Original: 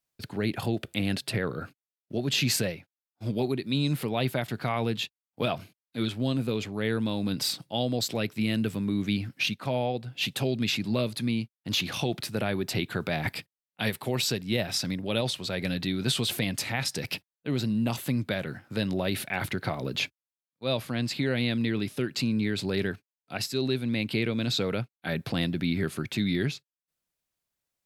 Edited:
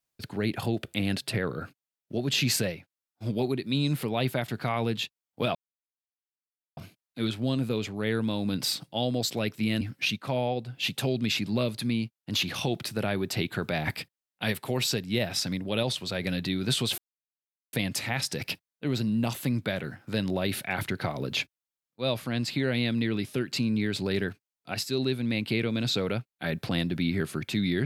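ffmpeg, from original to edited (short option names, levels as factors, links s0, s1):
-filter_complex "[0:a]asplit=4[s0][s1][s2][s3];[s0]atrim=end=5.55,asetpts=PTS-STARTPTS,afade=t=out:st=5.546:d=0.004:c=hsin,apad=pad_dur=1.22[s4];[s1]atrim=start=5.55:end=8.592,asetpts=PTS-STARTPTS,afade=t=in:d=0.004:c=hsin[s5];[s2]atrim=start=9.188:end=16.36,asetpts=PTS-STARTPTS,afade=t=out:st=7.168:d=0.004:c=hsin,apad=pad_dur=0.75[s6];[s3]atrim=start=16.36,asetpts=PTS-STARTPTS,afade=t=in:d=0.004:c=hsin[s7];[s4][s5]concat=n=2:v=0:a=1[s8];[s6][s7]concat=n=2:v=0:a=1[s9];[s8][s9]acrossfade=d=0.004:c1=hsin:c2=hsin"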